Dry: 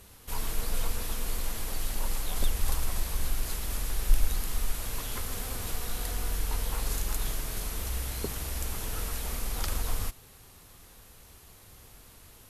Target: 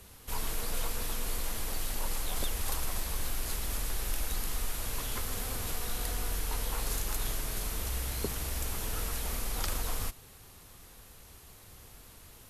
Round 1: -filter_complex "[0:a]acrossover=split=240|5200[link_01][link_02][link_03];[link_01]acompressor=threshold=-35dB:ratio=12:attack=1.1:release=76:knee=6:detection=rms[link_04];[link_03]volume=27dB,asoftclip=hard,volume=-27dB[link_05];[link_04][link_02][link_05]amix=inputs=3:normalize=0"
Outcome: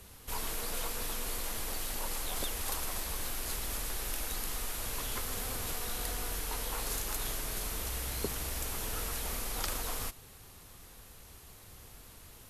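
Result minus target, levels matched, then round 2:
downward compressor: peak gain reduction +7 dB
-filter_complex "[0:a]acrossover=split=240|5200[link_01][link_02][link_03];[link_01]acompressor=threshold=-27.5dB:ratio=12:attack=1.1:release=76:knee=6:detection=rms[link_04];[link_03]volume=27dB,asoftclip=hard,volume=-27dB[link_05];[link_04][link_02][link_05]amix=inputs=3:normalize=0"

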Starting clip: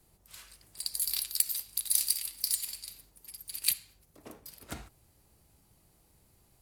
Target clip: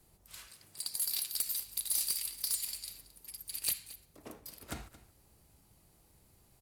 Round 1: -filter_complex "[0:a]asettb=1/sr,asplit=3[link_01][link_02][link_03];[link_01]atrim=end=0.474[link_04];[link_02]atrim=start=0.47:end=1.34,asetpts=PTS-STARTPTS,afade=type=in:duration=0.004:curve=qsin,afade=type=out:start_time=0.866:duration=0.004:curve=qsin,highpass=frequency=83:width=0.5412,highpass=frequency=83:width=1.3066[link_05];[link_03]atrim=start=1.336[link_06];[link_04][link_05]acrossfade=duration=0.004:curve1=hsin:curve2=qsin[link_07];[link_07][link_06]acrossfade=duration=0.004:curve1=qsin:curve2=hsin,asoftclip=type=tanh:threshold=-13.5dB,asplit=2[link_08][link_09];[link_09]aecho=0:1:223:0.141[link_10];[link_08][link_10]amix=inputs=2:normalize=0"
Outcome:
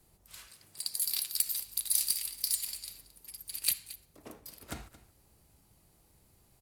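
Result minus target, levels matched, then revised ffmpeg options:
soft clipping: distortion −9 dB
-filter_complex "[0:a]asettb=1/sr,asplit=3[link_01][link_02][link_03];[link_01]atrim=end=0.474[link_04];[link_02]atrim=start=0.47:end=1.34,asetpts=PTS-STARTPTS,afade=type=in:duration=0.004:curve=qsin,afade=type=out:start_time=0.866:duration=0.004:curve=qsin,highpass=frequency=83:width=0.5412,highpass=frequency=83:width=1.3066[link_05];[link_03]atrim=start=1.336[link_06];[link_04][link_05]acrossfade=duration=0.004:curve1=hsin:curve2=qsin[link_07];[link_07][link_06]acrossfade=duration=0.004:curve1=qsin:curve2=hsin,asoftclip=type=tanh:threshold=-24.5dB,asplit=2[link_08][link_09];[link_09]aecho=0:1:223:0.141[link_10];[link_08][link_10]amix=inputs=2:normalize=0"

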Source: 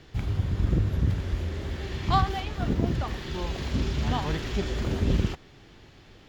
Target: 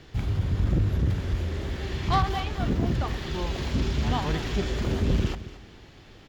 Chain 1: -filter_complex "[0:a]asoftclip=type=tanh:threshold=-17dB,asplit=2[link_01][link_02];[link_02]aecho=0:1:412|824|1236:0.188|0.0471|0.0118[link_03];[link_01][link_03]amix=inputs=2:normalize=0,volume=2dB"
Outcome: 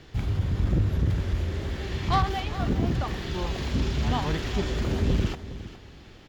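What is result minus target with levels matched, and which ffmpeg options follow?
echo 192 ms late
-filter_complex "[0:a]asoftclip=type=tanh:threshold=-17dB,asplit=2[link_01][link_02];[link_02]aecho=0:1:220|440|660:0.188|0.0471|0.0118[link_03];[link_01][link_03]amix=inputs=2:normalize=0,volume=2dB"

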